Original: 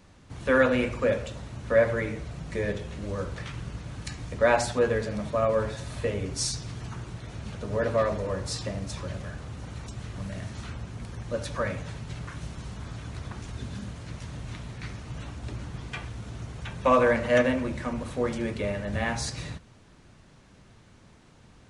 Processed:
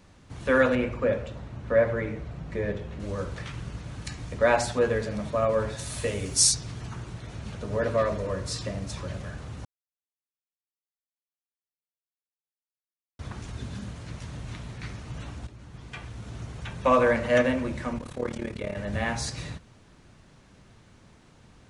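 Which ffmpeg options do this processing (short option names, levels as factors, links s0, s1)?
-filter_complex "[0:a]asettb=1/sr,asplit=3[s0][s1][s2];[s0]atrim=end=0.754[s3];[s1]atrim=start=0.75:end=3,asetpts=PTS-STARTPTS,afade=t=in:d=0.004:c=qsin,afade=t=out:st=2.246:d=0.004:c=qsin,lowpass=f=2000:p=1[s4];[s2]atrim=start=2.996[s5];[s3][s4]acrossfade=d=0.004:c1=hsin:c2=qsin[s6];[s6][s5]acrossfade=d=0.004:c1=qsin:c2=hsin,asplit=3[s7][s8][s9];[s7]afade=t=out:st=5.78:d=0.02[s10];[s8]aemphasis=mode=production:type=75fm,afade=t=in:st=5.78:d=0.02,afade=t=out:st=6.53:d=0.02[s11];[s9]afade=t=in:st=6.53:d=0.02[s12];[s10][s11][s12]amix=inputs=3:normalize=0,asettb=1/sr,asplit=3[s13][s14][s15];[s13]atrim=end=7.894[s16];[s14]atrim=start=7.89:end=8.73,asetpts=PTS-STARTPTS,afade=t=in:d=0.004:c=qsin,afade=t=out:st=0.836:d=0.004:c=qsin,asuperstop=centerf=820:order=4:qfactor=5.9[s17];[s15]atrim=start=8.726[s18];[s16][s17]acrossfade=d=0.004:c1=hsin:c2=qsin[s19];[s19][s18]acrossfade=d=0.004:c1=qsin:c2=hsin,asettb=1/sr,asplit=3[s20][s21][s22];[s20]atrim=end=17.984[s23];[s21]atrim=start=17.98:end=18.77,asetpts=PTS-STARTPTS,afade=t=in:d=0.004:c=qsin,afade=t=out:st=0.786:d=0.004:c=qsin,tremolo=f=36:d=0.857[s24];[s22]atrim=start=18.766[s25];[s23][s24]acrossfade=d=0.004:c1=hsin:c2=qsin[s26];[s26][s25]acrossfade=d=0.004:c1=qsin:c2=hsin,asplit=4[s27][s28][s29][s30];[s27]atrim=end=9.65,asetpts=PTS-STARTPTS,afade=t=out:st=9.646:d=0.004:c=hsin[s31];[s28]atrim=start=9.65:end=13.19,asetpts=PTS-STARTPTS,volume=0[s32];[s29]atrim=start=13.19:end=15.47,asetpts=PTS-STARTPTS,afade=t=in:d=0.004:c=hsin,afade=t=out:st=2.276:d=0.004:c=hsin:silence=0.211349[s33];[s30]atrim=start=15.47,asetpts=PTS-STARTPTS,afade=t=in:d=0.9:silence=0.211349[s34];[s31][s32][s33][s34]concat=n=4:v=0:a=1"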